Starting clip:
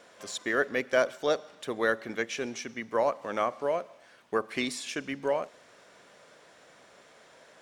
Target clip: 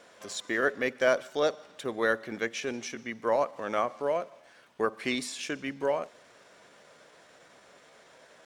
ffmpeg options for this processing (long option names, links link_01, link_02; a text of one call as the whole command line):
ffmpeg -i in.wav -af "atempo=0.9" out.wav